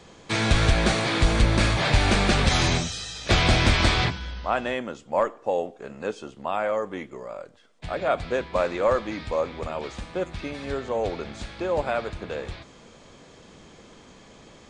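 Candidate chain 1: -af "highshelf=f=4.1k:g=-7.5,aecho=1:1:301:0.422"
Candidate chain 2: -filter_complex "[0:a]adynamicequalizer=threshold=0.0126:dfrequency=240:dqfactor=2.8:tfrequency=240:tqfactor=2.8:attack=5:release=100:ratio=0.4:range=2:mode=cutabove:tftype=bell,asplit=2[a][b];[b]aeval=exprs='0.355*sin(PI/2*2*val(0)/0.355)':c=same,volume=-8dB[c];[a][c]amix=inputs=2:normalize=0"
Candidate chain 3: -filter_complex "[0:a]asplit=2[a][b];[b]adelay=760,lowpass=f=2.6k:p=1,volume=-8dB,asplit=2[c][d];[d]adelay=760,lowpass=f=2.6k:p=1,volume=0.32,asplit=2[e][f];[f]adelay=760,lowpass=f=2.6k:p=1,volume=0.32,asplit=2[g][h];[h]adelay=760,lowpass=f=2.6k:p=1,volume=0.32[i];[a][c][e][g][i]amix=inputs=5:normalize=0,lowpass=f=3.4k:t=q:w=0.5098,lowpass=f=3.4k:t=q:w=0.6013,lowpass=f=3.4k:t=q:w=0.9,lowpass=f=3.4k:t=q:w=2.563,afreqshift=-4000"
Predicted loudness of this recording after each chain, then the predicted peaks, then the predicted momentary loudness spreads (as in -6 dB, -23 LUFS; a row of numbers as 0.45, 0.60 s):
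-25.0, -19.5, -21.0 LUFS; -7.5, -8.5, -6.5 dBFS; 13, 12, 14 LU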